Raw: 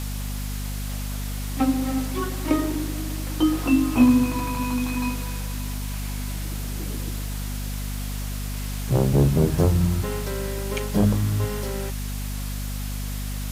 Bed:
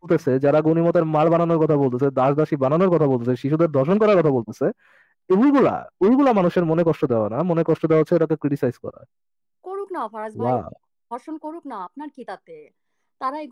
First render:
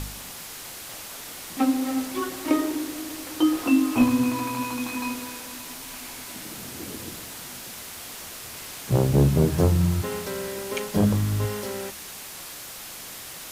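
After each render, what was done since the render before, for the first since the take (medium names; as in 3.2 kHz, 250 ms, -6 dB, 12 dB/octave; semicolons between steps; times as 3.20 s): de-hum 50 Hz, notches 5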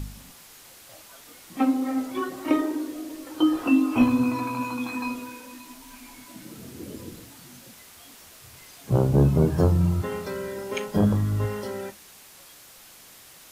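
noise print and reduce 10 dB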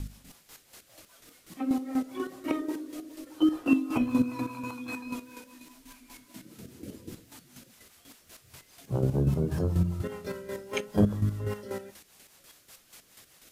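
square tremolo 4.1 Hz, depth 60%, duty 30%; rotary cabinet horn 5 Hz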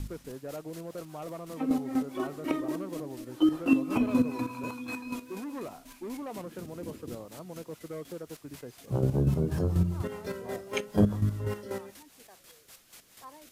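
add bed -23 dB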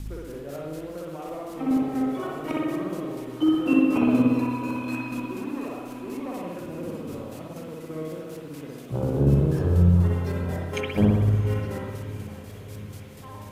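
echo that smears into a reverb 689 ms, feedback 66%, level -15.5 dB; spring tank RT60 1.2 s, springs 57 ms, chirp 80 ms, DRR -3 dB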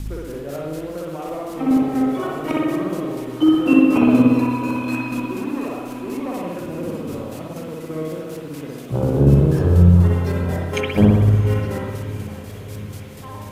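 trim +6.5 dB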